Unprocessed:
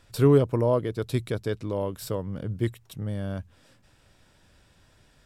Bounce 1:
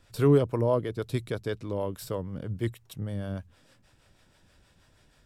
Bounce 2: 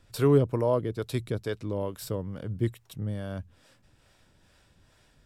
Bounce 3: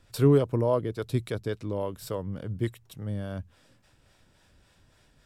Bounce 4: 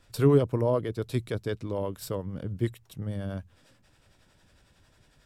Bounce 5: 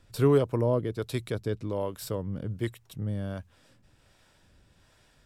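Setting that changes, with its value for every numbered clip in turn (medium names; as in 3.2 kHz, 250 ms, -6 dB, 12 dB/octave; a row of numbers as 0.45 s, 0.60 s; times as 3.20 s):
harmonic tremolo, rate: 6.3 Hz, 2.3 Hz, 3.5 Hz, 11 Hz, 1.3 Hz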